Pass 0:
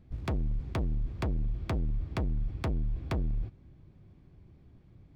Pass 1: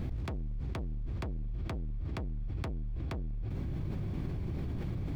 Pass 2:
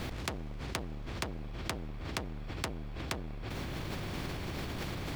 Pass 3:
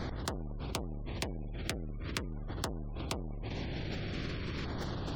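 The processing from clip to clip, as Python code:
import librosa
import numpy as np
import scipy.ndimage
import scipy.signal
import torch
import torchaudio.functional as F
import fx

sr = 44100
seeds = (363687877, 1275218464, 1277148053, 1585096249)

y1 = fx.env_flatten(x, sr, amount_pct=100)
y1 = y1 * 10.0 ** (-7.0 / 20.0)
y2 = fx.spectral_comp(y1, sr, ratio=2.0)
y2 = y2 * 10.0 ** (8.5 / 20.0)
y3 = fx.spec_gate(y2, sr, threshold_db=-30, keep='strong')
y3 = fx.filter_lfo_notch(y3, sr, shape='saw_down', hz=0.43, low_hz=690.0, high_hz=2800.0, q=1.4)
y3 = y3 * 10.0 ** (1.0 / 20.0)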